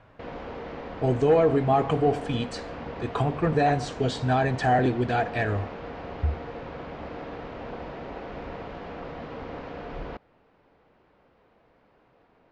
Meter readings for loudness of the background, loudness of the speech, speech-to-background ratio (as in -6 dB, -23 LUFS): -38.0 LUFS, -25.0 LUFS, 13.0 dB